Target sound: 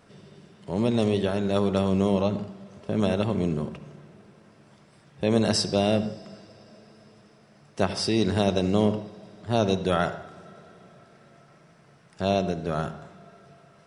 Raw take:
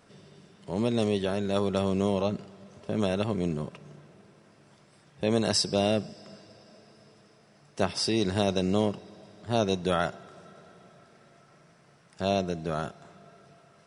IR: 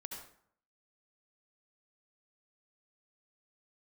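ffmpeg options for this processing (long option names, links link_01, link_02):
-filter_complex "[0:a]asplit=2[link_01][link_02];[1:a]atrim=start_sample=2205,lowpass=4800,lowshelf=frequency=220:gain=8[link_03];[link_02][link_03]afir=irnorm=-1:irlink=0,volume=-5dB[link_04];[link_01][link_04]amix=inputs=2:normalize=0"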